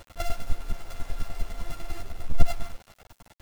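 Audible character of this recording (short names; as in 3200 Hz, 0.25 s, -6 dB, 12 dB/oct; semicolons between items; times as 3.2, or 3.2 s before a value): a buzz of ramps at a fixed pitch in blocks of 64 samples; chopped level 10 Hz, depth 65%, duty 10%; a quantiser's noise floor 8-bit, dither none; a shimmering, thickened sound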